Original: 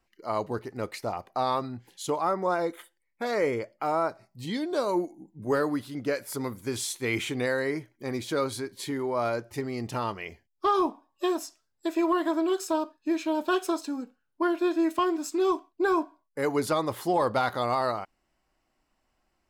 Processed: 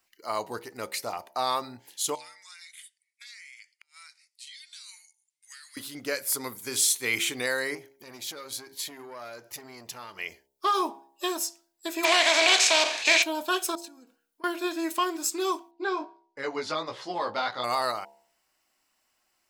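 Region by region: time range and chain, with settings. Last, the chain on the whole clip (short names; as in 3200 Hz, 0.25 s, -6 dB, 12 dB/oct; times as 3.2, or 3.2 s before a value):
2.15–5.77 elliptic band-pass 2100–9700 Hz, stop band 60 dB + compressor, threshold -49 dBFS + flipped gate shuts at -39 dBFS, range -32 dB
7.75–10.19 bell 8900 Hz -9.5 dB 0.22 oct + compressor 3:1, threshold -38 dBFS + core saturation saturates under 570 Hz
12.03–13.22 spectral contrast lowered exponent 0.42 + speaker cabinet 390–6000 Hz, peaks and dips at 680 Hz +9 dB, 1300 Hz -7 dB, 2300 Hz +9 dB, 5100 Hz -5 dB + fast leveller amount 70%
13.75–14.44 compressor 12:1, threshold -45 dBFS + comb 4.3 ms, depth 33%
15.71–17.64 LPF 5200 Hz 24 dB/oct + chorus 1.5 Hz, delay 15 ms
whole clip: tilt +3.5 dB/oct; de-hum 68.13 Hz, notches 14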